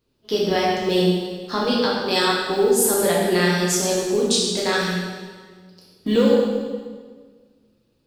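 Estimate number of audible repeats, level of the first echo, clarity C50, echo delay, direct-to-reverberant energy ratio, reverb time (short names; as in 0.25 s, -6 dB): none, none, -0.5 dB, none, -5.5 dB, 1.6 s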